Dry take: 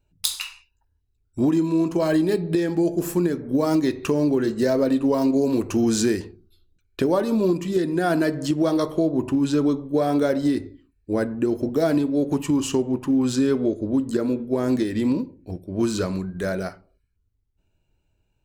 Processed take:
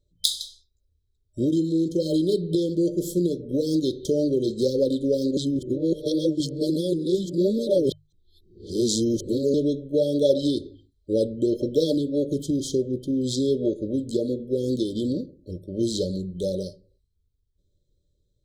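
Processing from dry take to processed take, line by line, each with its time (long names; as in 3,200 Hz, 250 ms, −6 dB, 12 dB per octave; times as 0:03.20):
0:05.37–0:09.54: reverse
0:10.25–0:11.92: parametric band 1,800 Hz +10.5 dB 2.3 octaves
0:12.44–0:13.14: parametric band 7,400 Hz −7.5 dB 0.2 octaves
whole clip: mains-hum notches 50/100/150 Hz; brick-wall band-stop 610–3,100 Hz; graphic EQ with 15 bands 250 Hz −6 dB, 1,000 Hz +12 dB, 4,000 Hz +4 dB, 16,000 Hz −9 dB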